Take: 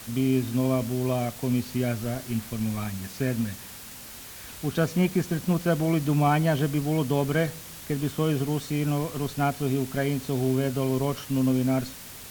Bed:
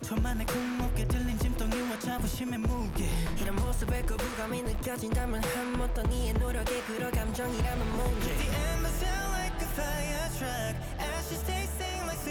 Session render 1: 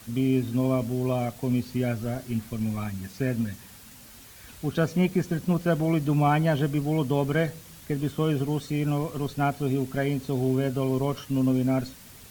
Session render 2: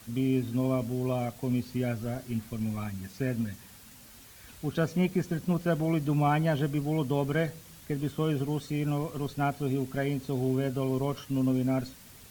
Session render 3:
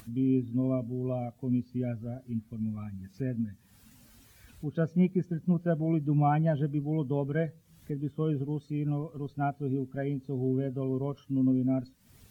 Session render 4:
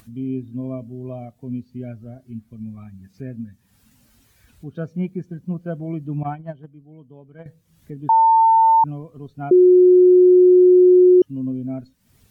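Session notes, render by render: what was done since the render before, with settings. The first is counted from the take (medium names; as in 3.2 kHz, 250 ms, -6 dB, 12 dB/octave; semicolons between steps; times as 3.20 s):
noise reduction 7 dB, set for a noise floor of -42 dBFS
trim -3.5 dB
upward compressor, threshold -31 dBFS; spectral contrast expander 1.5:1
6.23–7.46 s: gate -25 dBFS, range -15 dB; 8.09–8.84 s: bleep 899 Hz -10 dBFS; 9.51–11.22 s: bleep 363 Hz -7.5 dBFS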